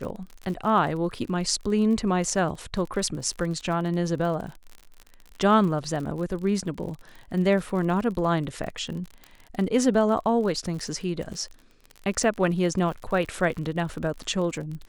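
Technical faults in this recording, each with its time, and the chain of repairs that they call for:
surface crackle 44 per second −33 dBFS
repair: click removal

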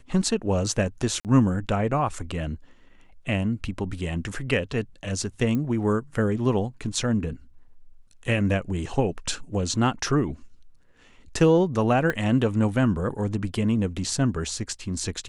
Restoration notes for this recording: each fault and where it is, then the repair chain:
0:01.20–0:01.25: drop-out 48 ms
0:05.55: click −17 dBFS
0:12.10: click −13 dBFS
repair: click removal
repair the gap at 0:01.20, 48 ms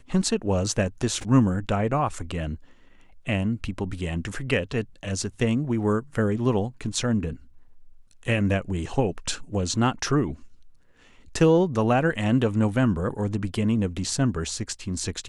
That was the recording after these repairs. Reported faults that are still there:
0:12.10: click

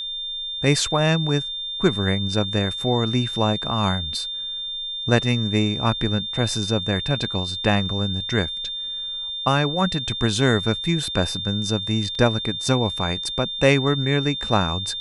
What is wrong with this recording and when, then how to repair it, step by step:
whistle 3,600 Hz −27 dBFS
0:12.15: drop-out 3.2 ms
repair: notch filter 3,600 Hz, Q 30
repair the gap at 0:12.15, 3.2 ms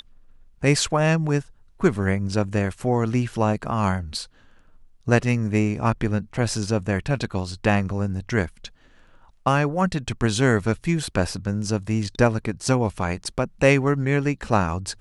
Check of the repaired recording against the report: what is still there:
none of them is left

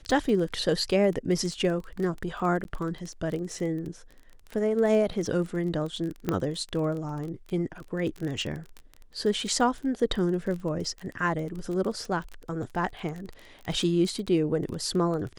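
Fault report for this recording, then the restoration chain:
surface crackle 21 per second −32 dBFS
0:02.64–0:02.65: drop-out 11 ms
0:06.29: click −13 dBFS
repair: click removal
repair the gap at 0:02.64, 11 ms

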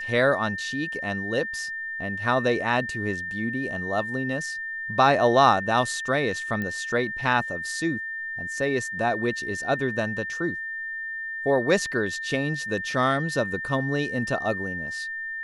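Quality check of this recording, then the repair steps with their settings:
whistle 1,800 Hz −30 dBFS
0:06.62: click −18 dBFS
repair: click removal
notch filter 1,800 Hz, Q 30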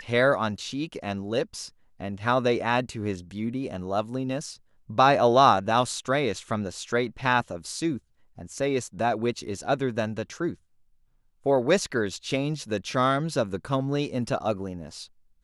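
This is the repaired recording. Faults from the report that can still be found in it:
none of them is left

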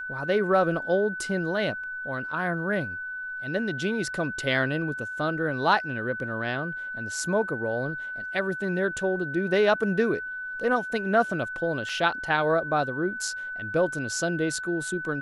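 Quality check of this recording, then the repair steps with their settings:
whistle 1,500 Hz −32 dBFS
0:11.89: drop-out 3.5 ms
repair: notch filter 1,500 Hz, Q 30
repair the gap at 0:11.89, 3.5 ms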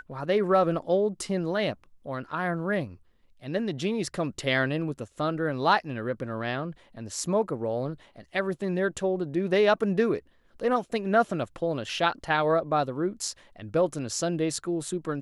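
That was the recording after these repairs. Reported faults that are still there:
none of them is left

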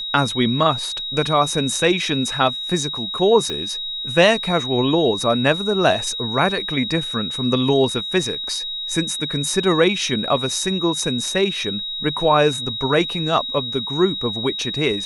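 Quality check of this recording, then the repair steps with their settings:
whistle 3,800 Hz −25 dBFS
0:03.50: click −14 dBFS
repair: click removal
notch filter 3,800 Hz, Q 30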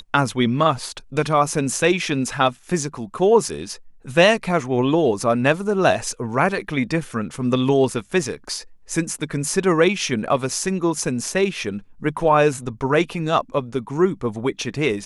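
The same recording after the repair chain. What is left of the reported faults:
0:03.50: click

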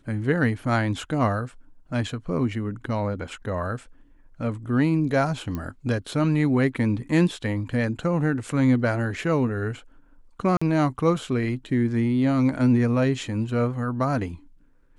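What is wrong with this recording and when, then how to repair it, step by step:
0:05.55: click −18 dBFS
0:10.57–0:10.62: drop-out 45 ms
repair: click removal
repair the gap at 0:10.57, 45 ms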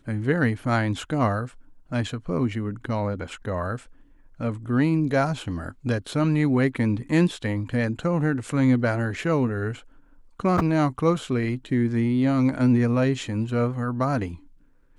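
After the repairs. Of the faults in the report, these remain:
none of them is left

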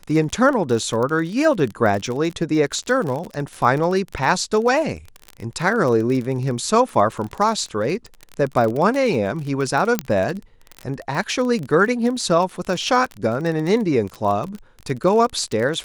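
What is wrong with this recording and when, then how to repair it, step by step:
surface crackle 31 per second −24 dBFS
0:09.99: click −4 dBFS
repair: click removal

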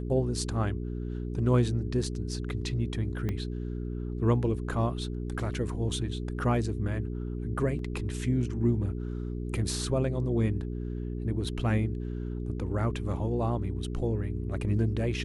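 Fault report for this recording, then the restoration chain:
mains hum 60 Hz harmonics 7 −34 dBFS
0:03.29: click −20 dBFS
0:07.79: drop-out 2.4 ms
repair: click removal
hum removal 60 Hz, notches 7
repair the gap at 0:07.79, 2.4 ms

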